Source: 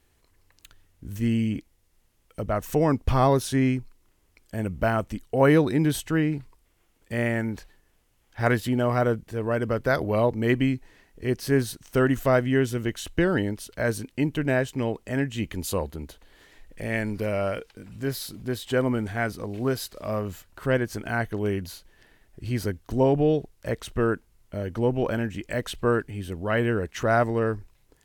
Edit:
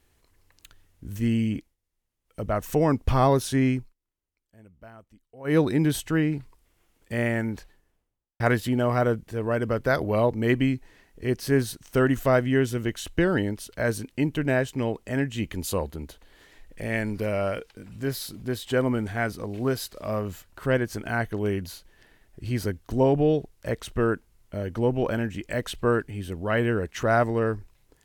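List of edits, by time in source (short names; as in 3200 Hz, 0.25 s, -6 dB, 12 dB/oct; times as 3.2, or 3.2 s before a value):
1.56–2.44 dip -15.5 dB, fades 0.20 s
3.79–5.59 dip -23.5 dB, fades 0.15 s
7.5–8.4 studio fade out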